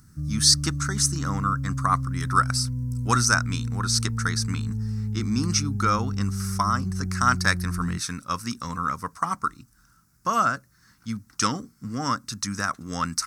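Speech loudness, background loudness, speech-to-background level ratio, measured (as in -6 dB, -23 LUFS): -26.0 LUFS, -30.0 LUFS, 4.0 dB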